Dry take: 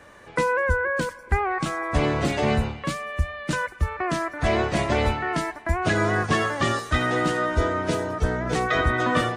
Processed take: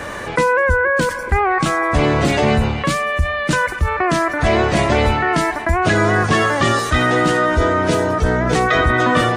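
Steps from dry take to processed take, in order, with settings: fast leveller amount 50%; gain +4.5 dB

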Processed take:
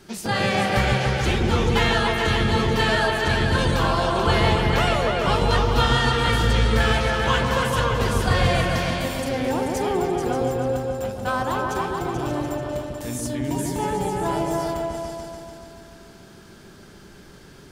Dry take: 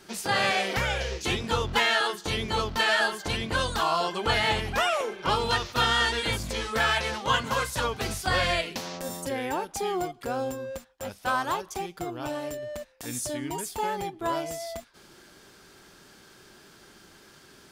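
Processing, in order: low shelf 270 Hz +10.5 dB; repeats that get brighter 0.145 s, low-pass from 750 Hz, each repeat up 2 oct, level 0 dB

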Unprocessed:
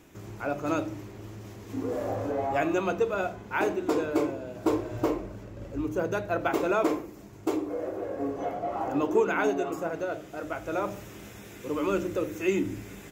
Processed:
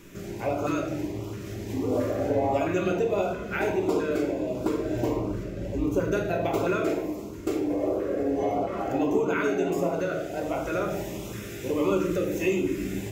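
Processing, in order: compressor, threshold -29 dBFS, peak gain reduction 11 dB; shoebox room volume 480 m³, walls mixed, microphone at 1.2 m; LFO notch saw up 1.5 Hz 700–1900 Hz; gain +5.5 dB

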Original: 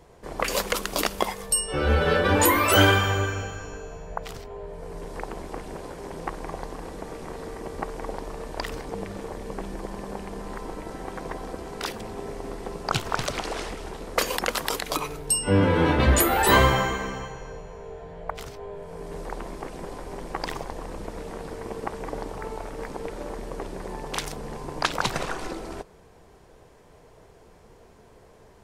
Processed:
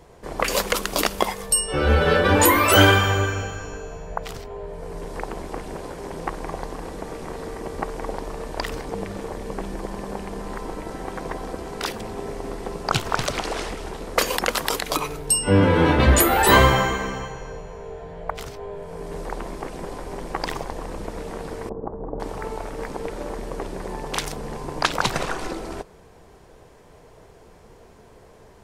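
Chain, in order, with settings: 21.69–22.2 Bessel low-pass 680 Hz, order 6; gain +3.5 dB

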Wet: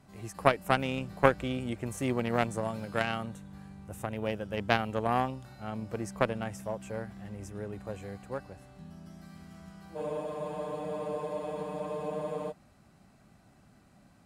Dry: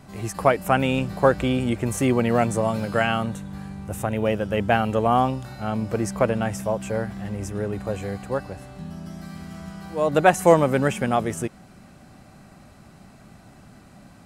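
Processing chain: added harmonics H 3 -12 dB, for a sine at -2 dBFS; spectral freeze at 9.98, 2.52 s

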